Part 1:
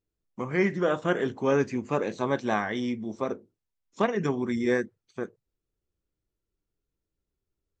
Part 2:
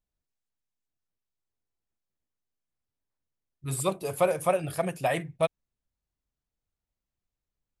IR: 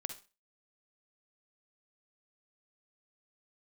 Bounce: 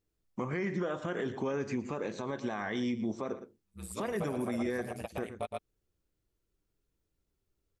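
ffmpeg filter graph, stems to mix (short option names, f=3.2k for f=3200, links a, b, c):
-filter_complex "[0:a]alimiter=limit=-17.5dB:level=0:latency=1:release=95,volume=3dB,asplit=3[a][b][c];[b]volume=-16.5dB[d];[1:a]aeval=exprs='val(0)*sin(2*PI*57*n/s)':c=same,volume=-4.5dB,asplit=2[e][f];[f]volume=-5dB[g];[c]apad=whole_len=344007[h];[e][h]sidechaingate=range=-45dB:threshold=-54dB:ratio=16:detection=peak[i];[d][g]amix=inputs=2:normalize=0,aecho=0:1:115:1[j];[a][i][j]amix=inputs=3:normalize=0,alimiter=level_in=1dB:limit=-24dB:level=0:latency=1:release=195,volume=-1dB"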